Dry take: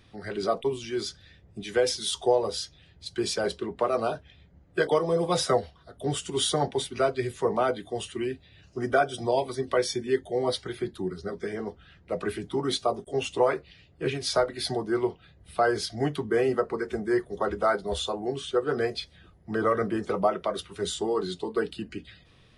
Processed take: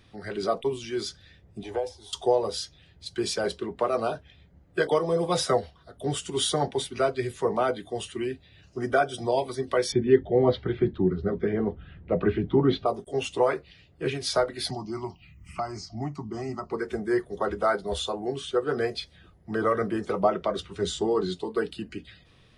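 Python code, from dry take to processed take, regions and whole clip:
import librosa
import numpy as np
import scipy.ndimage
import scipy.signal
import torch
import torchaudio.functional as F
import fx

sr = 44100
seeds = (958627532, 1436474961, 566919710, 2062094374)

y = fx.chain(x, sr, fx.curve_eq(hz=(100.0, 170.0, 260.0, 480.0, 860.0, 1400.0), db=(0, -30, -14, -7, 5, -20)),
    fx.band_squash(depth_pct=70), at=(1.63, 2.13))
y = fx.chain(y, sr, fx.lowpass(hz=3300.0, slope=24),
    fx.low_shelf(hz=440.0, db=11.5), at=(9.92, 12.86))
y = fx.chain(y, sr, fx.fixed_phaser(hz=2400.0, stages=8),
    fx.env_phaser(low_hz=570.0, high_hz=3400.0, full_db=-28.5),
    fx.band_squash(depth_pct=70), at=(14.7, 16.71))
y = fx.chain(y, sr, fx.lowpass(hz=8300.0, slope=24),
    fx.low_shelf(hz=370.0, db=5.5), at=(20.23, 21.34))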